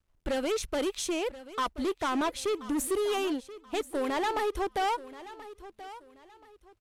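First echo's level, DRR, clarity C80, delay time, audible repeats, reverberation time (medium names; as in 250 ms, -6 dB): -16.0 dB, no reverb, no reverb, 1030 ms, 2, no reverb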